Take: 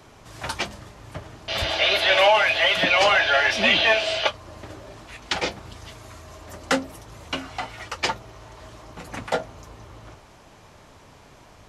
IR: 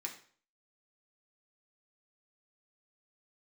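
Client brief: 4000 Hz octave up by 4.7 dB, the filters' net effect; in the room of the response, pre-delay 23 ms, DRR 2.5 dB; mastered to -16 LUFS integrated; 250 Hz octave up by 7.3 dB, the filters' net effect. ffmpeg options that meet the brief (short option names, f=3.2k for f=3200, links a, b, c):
-filter_complex "[0:a]equalizer=f=250:t=o:g=8.5,equalizer=f=4k:t=o:g=6.5,asplit=2[a][b];[1:a]atrim=start_sample=2205,adelay=23[c];[b][c]afir=irnorm=-1:irlink=0,volume=-1.5dB[d];[a][d]amix=inputs=2:normalize=0,volume=0.5dB"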